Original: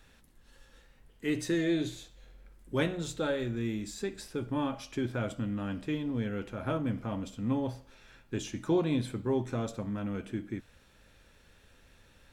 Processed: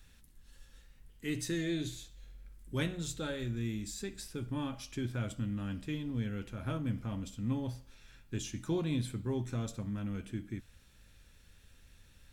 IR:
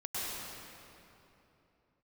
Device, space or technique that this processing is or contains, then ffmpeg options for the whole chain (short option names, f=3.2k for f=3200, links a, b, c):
smiley-face EQ: -af "lowshelf=f=160:g=6.5,equalizer=f=610:t=o:w=2.4:g=-7,highshelf=f=5.2k:g=6.5,volume=-3dB"